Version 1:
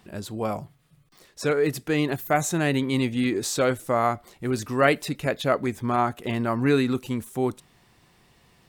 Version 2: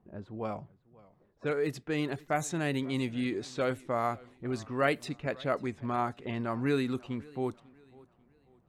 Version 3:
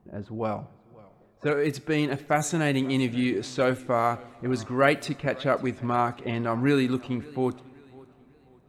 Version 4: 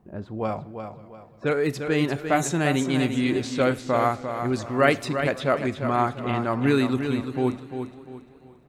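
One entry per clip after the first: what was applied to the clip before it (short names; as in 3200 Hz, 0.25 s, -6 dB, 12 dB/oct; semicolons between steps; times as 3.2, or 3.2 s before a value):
low-pass opened by the level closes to 700 Hz, open at -18.5 dBFS; warbling echo 0.543 s, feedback 37%, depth 117 cents, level -23 dB; gain -8 dB
two-slope reverb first 0.48 s, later 4.7 s, from -18 dB, DRR 16 dB; gain +6.5 dB
feedback echo 0.347 s, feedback 33%, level -8 dB; gain +1.5 dB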